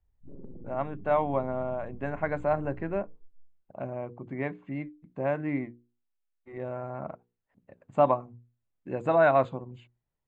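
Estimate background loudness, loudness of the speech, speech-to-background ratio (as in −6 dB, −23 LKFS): −50.0 LKFS, −30.0 LKFS, 20.0 dB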